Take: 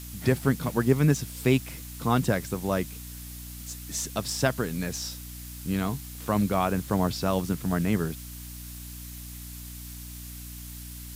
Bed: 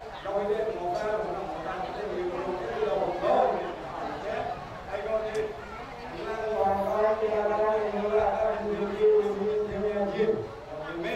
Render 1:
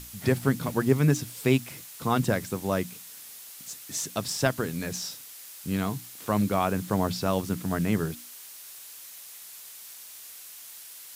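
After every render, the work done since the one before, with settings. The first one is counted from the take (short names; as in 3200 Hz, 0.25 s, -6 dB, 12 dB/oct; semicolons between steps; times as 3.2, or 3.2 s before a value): notches 60/120/180/240/300 Hz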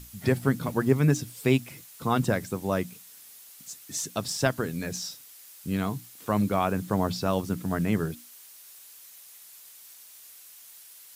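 denoiser 6 dB, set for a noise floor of -45 dBFS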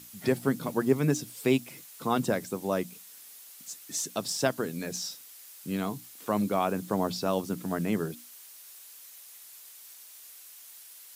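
dynamic EQ 1700 Hz, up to -4 dB, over -43 dBFS, Q 0.94; HPF 200 Hz 12 dB/oct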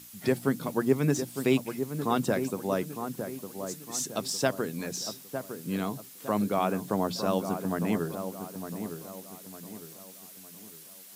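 dark delay 0.907 s, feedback 39%, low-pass 1500 Hz, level -8 dB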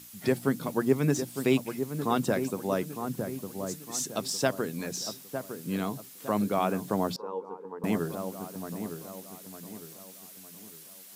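3.04–3.76 low shelf 160 Hz +9 dB; 7.16–7.84 double band-pass 650 Hz, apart 0.96 oct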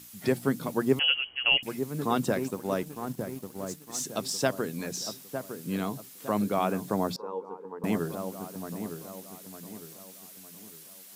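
0.99–1.63 inverted band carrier 3100 Hz; 2.32–4.05 G.711 law mismatch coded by A; 6.87–7.39 notch 3000 Hz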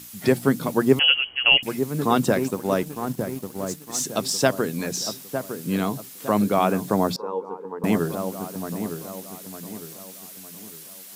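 gain +7 dB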